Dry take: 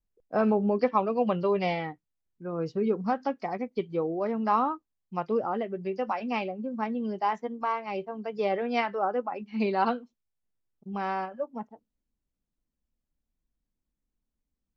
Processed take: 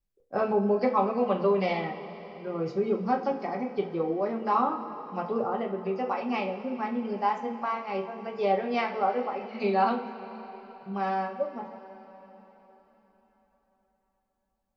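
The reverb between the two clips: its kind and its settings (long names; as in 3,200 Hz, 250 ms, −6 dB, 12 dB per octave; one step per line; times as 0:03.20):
coupled-rooms reverb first 0.3 s, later 4.4 s, from −18 dB, DRR 1 dB
level −2 dB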